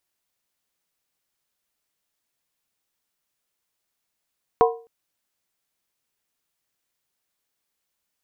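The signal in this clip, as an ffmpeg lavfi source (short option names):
-f lavfi -i "aevalsrc='0.266*pow(10,-3*t/0.37)*sin(2*PI*460*t)+0.2*pow(10,-3*t/0.293)*sin(2*PI*733.2*t)+0.15*pow(10,-3*t/0.253)*sin(2*PI*982.6*t)+0.112*pow(10,-3*t/0.244)*sin(2*PI*1056.2*t)':d=0.26:s=44100"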